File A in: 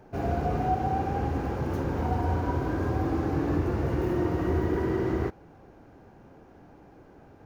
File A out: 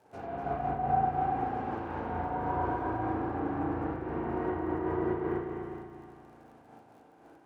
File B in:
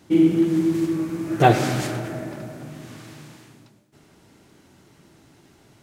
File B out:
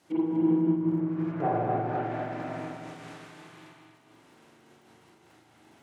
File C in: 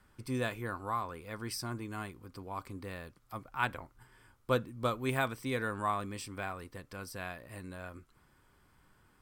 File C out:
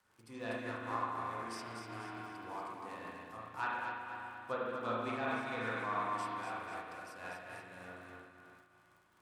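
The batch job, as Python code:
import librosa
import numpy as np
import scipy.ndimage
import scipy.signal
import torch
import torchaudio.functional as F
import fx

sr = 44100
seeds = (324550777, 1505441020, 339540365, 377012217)

p1 = fx.cvsd(x, sr, bps=64000)
p2 = np.clip(p1, -10.0 ** (-12.5 / 20.0), 10.0 ** (-12.5 / 20.0))
p3 = fx.env_lowpass_down(p2, sr, base_hz=750.0, full_db=-20.0)
p4 = fx.peak_eq(p3, sr, hz=900.0, db=3.0, octaves=0.79)
p5 = fx.hum_notches(p4, sr, base_hz=50, count=8)
p6 = p5 + fx.echo_feedback(p5, sr, ms=245, feedback_pct=42, wet_db=-6.0, dry=0)
p7 = fx.rev_spring(p6, sr, rt60_s=2.0, pass_ms=(35, 44), chirp_ms=50, drr_db=-5.5)
p8 = fx.dmg_crackle(p7, sr, seeds[0], per_s=60.0, level_db=-47.0)
p9 = fx.highpass(p8, sr, hz=310.0, slope=6)
p10 = fx.am_noise(p9, sr, seeds[1], hz=5.7, depth_pct=55)
y = F.gain(torch.from_numpy(p10), -7.0).numpy()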